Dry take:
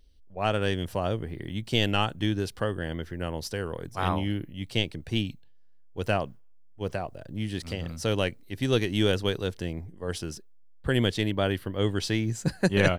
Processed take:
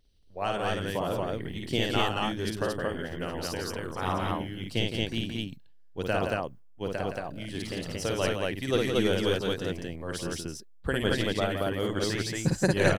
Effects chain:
dynamic equaliser 3,000 Hz, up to −4 dB, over −41 dBFS, Q 0.97
harmonic and percussive parts rebalanced harmonic −11 dB
loudspeakers that aren't time-aligned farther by 18 metres −3 dB, 57 metres −7 dB, 78 metres −1 dB

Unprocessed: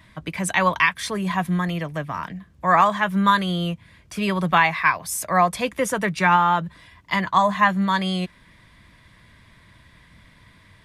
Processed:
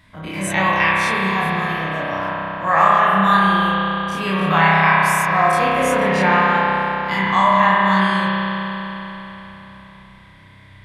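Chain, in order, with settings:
every bin's largest magnitude spread in time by 60 ms
spring reverb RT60 3.9 s, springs 31 ms, chirp 30 ms, DRR −6 dB
level −5.5 dB

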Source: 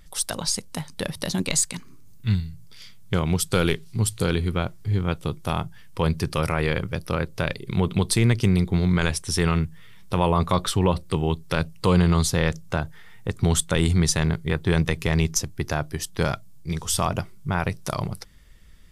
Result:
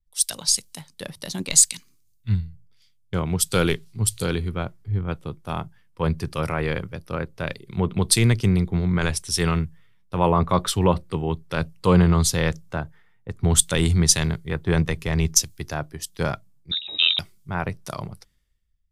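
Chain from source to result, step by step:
0:16.71–0:17.19: voice inversion scrambler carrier 3,800 Hz
multiband upward and downward expander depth 100%
level −1 dB

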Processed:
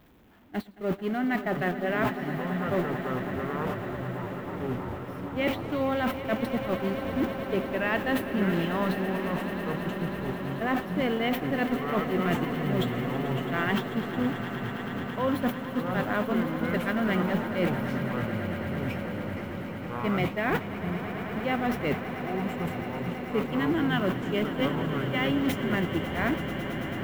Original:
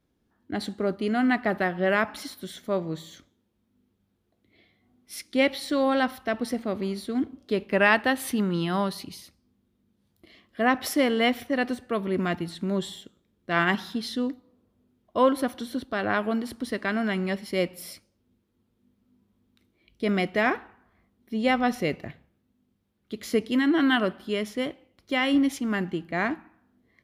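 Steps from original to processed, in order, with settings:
converter with a step at zero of −29.5 dBFS
noise gate −24 dBFS, range −28 dB
reversed playback
downward compressor 6 to 1, threshold −32 dBFS, peak gain reduction 17 dB
reversed playback
echo that builds up and dies away 110 ms, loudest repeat 8, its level −14.5 dB
delay with pitch and tempo change per echo 774 ms, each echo −6 semitones, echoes 3, each echo −6 dB
flat-topped bell 6,800 Hz −10.5 dB
level +6 dB

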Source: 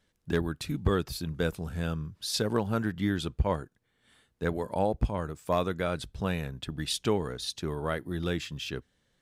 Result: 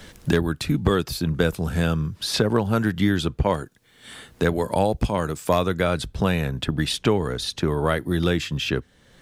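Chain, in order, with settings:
multiband upward and downward compressor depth 70%
level +8 dB

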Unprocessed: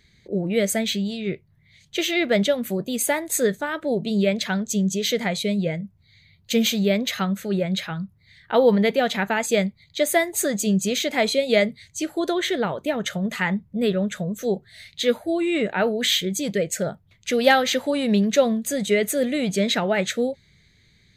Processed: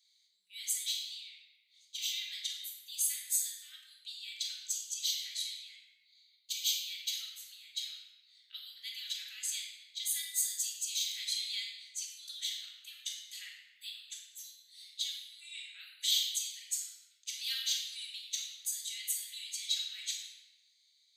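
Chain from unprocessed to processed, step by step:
inverse Chebyshev high-pass filter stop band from 790 Hz, stop band 70 dB
convolution reverb RT60 1.2 s, pre-delay 3 ms, DRR −3.5 dB
level −8.5 dB

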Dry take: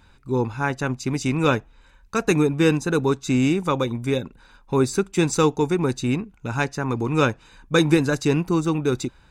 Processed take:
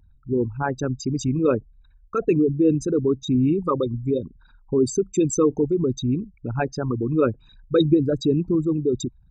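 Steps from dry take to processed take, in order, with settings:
spectral envelope exaggerated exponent 3
parametric band 1,500 Hz −7.5 dB 0.2 octaves, from 0:08.59 −14.5 dB

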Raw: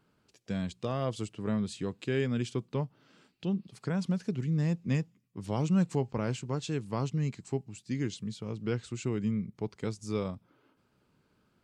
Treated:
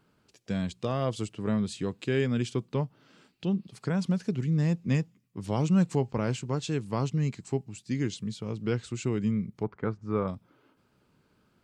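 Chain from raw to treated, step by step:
0:09.63–0:10.28: low-pass with resonance 1,400 Hz, resonance Q 2
level +3 dB

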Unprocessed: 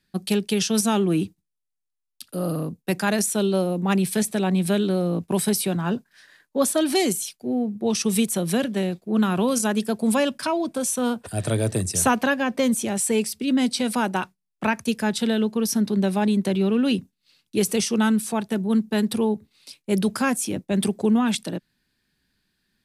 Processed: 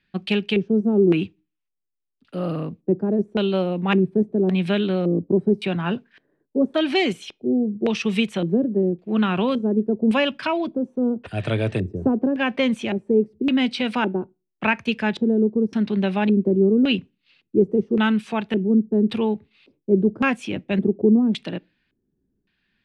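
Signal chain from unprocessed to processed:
auto-filter low-pass square 0.89 Hz 380–2,700 Hz
on a send: convolution reverb, pre-delay 3 ms, DRR 23 dB

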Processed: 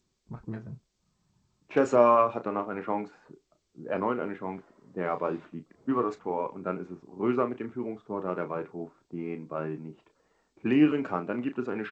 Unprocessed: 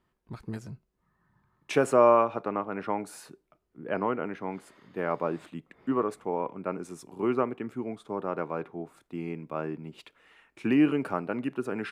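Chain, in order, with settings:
spectral magnitudes quantised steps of 15 dB
double-tracking delay 33 ms −10 dB
low-pass that shuts in the quiet parts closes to 650 Hz, open at −22.5 dBFS
G.722 64 kbit/s 16,000 Hz

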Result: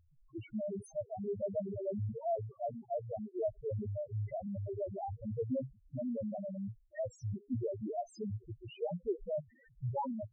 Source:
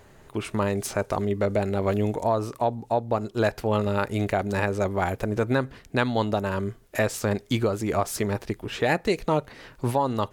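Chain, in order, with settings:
running median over 3 samples
spectral peaks only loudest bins 1
level −3 dB

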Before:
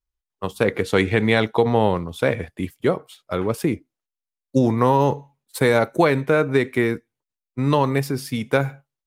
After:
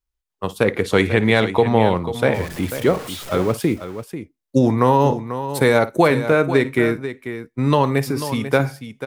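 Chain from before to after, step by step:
0:02.34–0:03.54: converter with a step at zero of −30.5 dBFS
multi-tap delay 55/491 ms −17.5/−11 dB
level +2 dB

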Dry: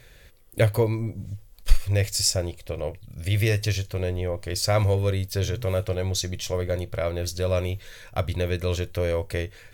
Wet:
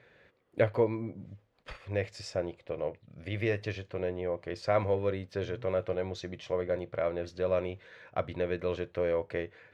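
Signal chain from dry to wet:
band-pass filter 190–2,000 Hz
level −3 dB

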